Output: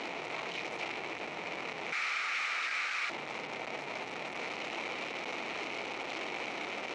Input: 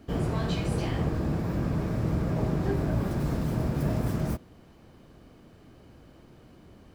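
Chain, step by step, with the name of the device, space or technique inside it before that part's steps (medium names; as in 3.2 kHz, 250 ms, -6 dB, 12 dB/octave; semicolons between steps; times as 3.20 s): 1.92–3.10 s: steep high-pass 1.2 kHz 96 dB/octave; home computer beeper (one-bit comparator; cabinet simulation 590–4900 Hz, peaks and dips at 600 Hz -3 dB, 1.1 kHz -5 dB, 1.6 kHz -9 dB, 2.3 kHz +8 dB, 3.4 kHz -5 dB, 4.8 kHz -8 dB)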